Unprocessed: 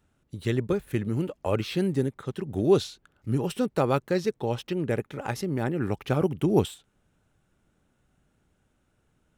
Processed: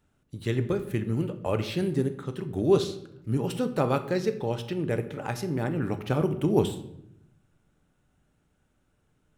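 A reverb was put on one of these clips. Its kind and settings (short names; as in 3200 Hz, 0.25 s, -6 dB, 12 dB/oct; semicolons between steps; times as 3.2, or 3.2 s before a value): shoebox room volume 200 m³, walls mixed, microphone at 0.38 m; gain -1.5 dB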